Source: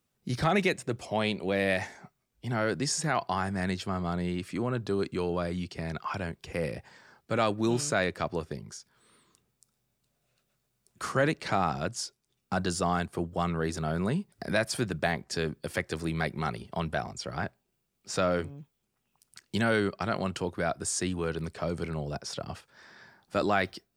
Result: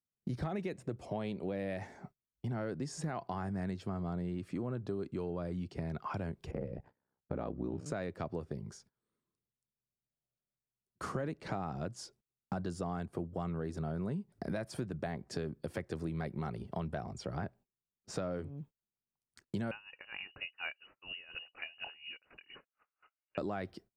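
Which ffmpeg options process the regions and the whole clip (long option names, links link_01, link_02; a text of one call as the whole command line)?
ffmpeg -i in.wav -filter_complex "[0:a]asettb=1/sr,asplit=3[link_01][link_02][link_03];[link_01]atrim=end=6.514[link_04];[link_02]atrim=start=6.51:end=7.86,asetpts=PTS-STARTPTS,afade=type=in:duration=0.004:curve=qsin,afade=type=out:start_time=1.346:duration=0.004:curve=qsin,lowpass=frequency=1100:poles=1,aeval=exprs='val(0)*sin(2*PI*32*n/s)':channel_layout=same[link_05];[link_03]atrim=start=7.856[link_06];[link_04][link_05]acrossfade=duration=0.004:curve1=hsin:curve2=qsin[link_07];[link_07][link_06]acrossfade=duration=0.004:curve1=qsin:curve2=hsin,asettb=1/sr,asplit=3[link_08][link_09][link_10];[link_08]atrim=end=19.714[link_11];[link_09]atrim=start=19.71:end=23.38,asetpts=PTS-STARTPTS,afade=type=in:duration=0.004:curve=qsin,afade=type=out:start_time=3.666:duration=0.004:curve=qsin,lowpass=frequency=2600:width_type=q:width=0.5098,lowpass=frequency=2600:width_type=q:width=0.6013,lowpass=frequency=2600:width_type=q:width=0.9,lowpass=frequency=2600:width_type=q:width=2.563,afreqshift=-3000,aeval=exprs='val(0)*pow(10,-19*(0.5-0.5*cos(2*PI*4.2*n/s))/20)':channel_layout=same[link_12];[link_10]atrim=start=23.376[link_13];[link_11][link_12]acrossfade=duration=0.004:curve1=hsin:curve2=qsin[link_14];[link_14][link_13]acrossfade=duration=0.004:curve1=qsin:curve2=hsin,agate=range=-23dB:threshold=-53dB:ratio=16:detection=peak,tiltshelf=frequency=1100:gain=7,acompressor=threshold=-31dB:ratio=5,volume=-4dB" out.wav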